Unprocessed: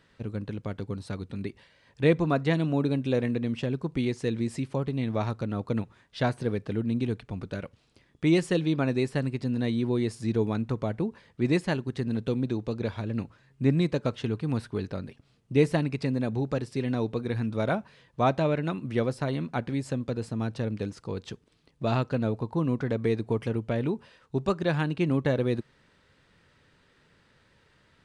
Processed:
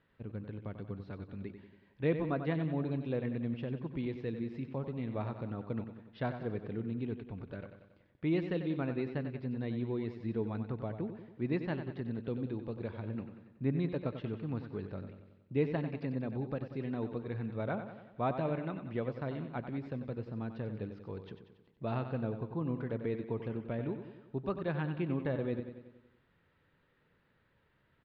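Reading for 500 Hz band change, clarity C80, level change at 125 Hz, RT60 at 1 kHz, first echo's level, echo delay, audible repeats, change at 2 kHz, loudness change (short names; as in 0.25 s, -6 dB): -8.5 dB, none, -8.5 dB, none, -9.5 dB, 93 ms, 6, -10.0 dB, -8.5 dB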